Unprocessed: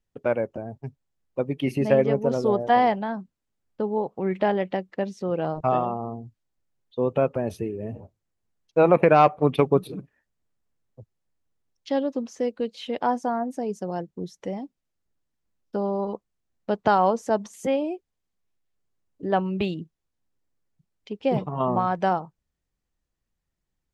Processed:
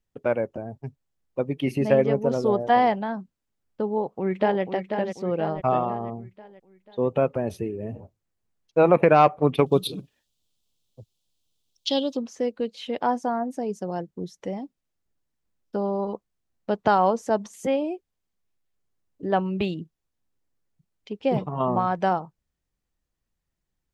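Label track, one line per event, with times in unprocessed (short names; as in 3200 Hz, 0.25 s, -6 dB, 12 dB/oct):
3.920000	4.630000	echo throw 0.49 s, feedback 50%, level -7 dB
9.660000	12.170000	resonant high shelf 2500 Hz +10.5 dB, Q 3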